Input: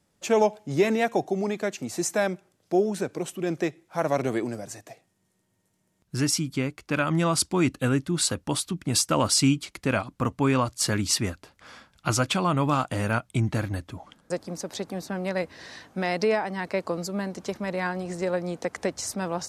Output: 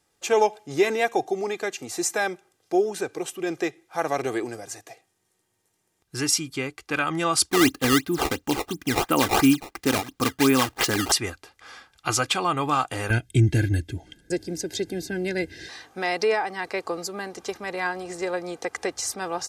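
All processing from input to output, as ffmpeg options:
ffmpeg -i in.wav -filter_complex "[0:a]asettb=1/sr,asplit=3[link_01][link_02][link_03];[link_01]atrim=end=7.504[link_04];[link_02]atrim=start=7.5:end=11.12,asetpts=PTS-STARTPTS,afade=type=in:duration=0.004:curve=qsin,afade=type=out:start_time=3.616:duration=0.004:curve=qsin,equalizer=frequency=250:width=1.6:gain=9.5,acrusher=samples=16:mix=1:aa=0.000001:lfo=1:lforange=25.6:lforate=2.9[link_05];[link_03]atrim=start=11.116[link_06];[link_04][link_05]acrossfade=duration=0.004:curve1=hsin:curve2=qsin[link_07];[link_07][link_06]acrossfade=duration=0.004:curve1=qsin:curve2=hsin,asettb=1/sr,asplit=3[link_08][link_09][link_10];[link_08]atrim=end=13.104[link_11];[link_09]atrim=start=13.1:end=15.69,asetpts=PTS-STARTPTS,afade=type=in:duration=0.004:curve=qsin,afade=type=out:start_time=2.586:duration=0.004:curve=qsin,asuperstop=centerf=1100:order=4:qfactor=1.7,lowshelf=frequency=390:width_type=q:width=3:gain=9.5,aecho=1:1:1.9:0.63,atrim=end_sample=114219[link_12];[link_10]atrim=start=15.686[link_13];[link_11][link_12]acrossfade=duration=0.004:curve1=hsin:curve2=qsin[link_14];[link_14][link_13]acrossfade=duration=0.004:curve1=qsin:curve2=hsin,lowshelf=frequency=390:gain=-9,aecho=1:1:2.5:0.51,volume=2.5dB" out.wav

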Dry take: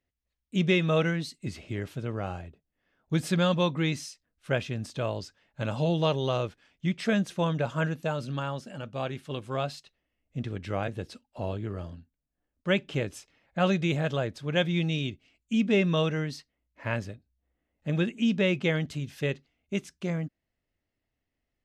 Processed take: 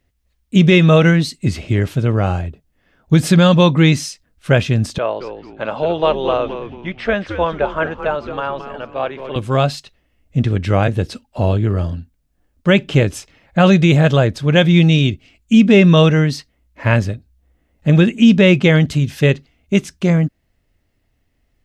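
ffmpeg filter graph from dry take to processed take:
ffmpeg -i in.wav -filter_complex "[0:a]asettb=1/sr,asplit=3[link_01][link_02][link_03];[link_01]atrim=end=4.984[link_04];[link_02]atrim=start=4.98:end=9.36,asetpts=PTS-STARTPTS,afade=type=in:duration=0.004:curve=qsin,afade=type=out:start_time=4.376:duration=0.004:curve=qsin,highpass=500,lowpass=3500,highshelf=frequency=2700:gain=-10,asplit=5[link_05][link_06][link_07][link_08][link_09];[link_06]adelay=219,afreqshift=-130,volume=-10dB[link_10];[link_07]adelay=438,afreqshift=-260,volume=-19.9dB[link_11];[link_08]adelay=657,afreqshift=-390,volume=-29.8dB[link_12];[link_09]adelay=876,afreqshift=-520,volume=-39.7dB[link_13];[link_05][link_10][link_11][link_12][link_13]amix=inputs=5:normalize=0,atrim=end_sample=193158[link_14];[link_03]atrim=start=9.356[link_15];[link_04][link_14]acrossfade=duration=0.004:curve1=hsin:curve2=qsin[link_16];[link_16][link_15]acrossfade=duration=0.004:curve1=qsin:curve2=hsin,lowshelf=frequency=130:gain=8.5,alimiter=level_in=15dB:limit=-1dB:release=50:level=0:latency=1,volume=-1dB" out.wav

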